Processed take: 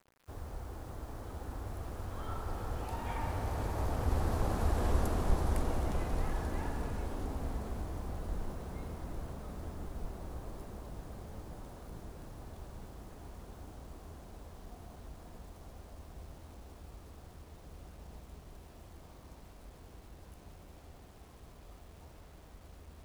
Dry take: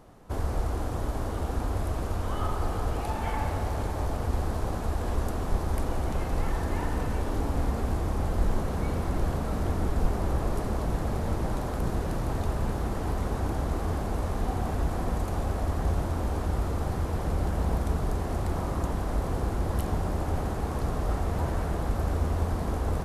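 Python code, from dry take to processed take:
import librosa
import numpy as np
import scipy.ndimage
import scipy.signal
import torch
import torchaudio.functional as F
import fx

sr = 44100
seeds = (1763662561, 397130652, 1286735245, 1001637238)

y = fx.doppler_pass(x, sr, speed_mps=19, closest_m=19.0, pass_at_s=4.84)
y = fx.quant_dither(y, sr, seeds[0], bits=10, dither='none')
y = y * 10.0 ** (-1.5 / 20.0)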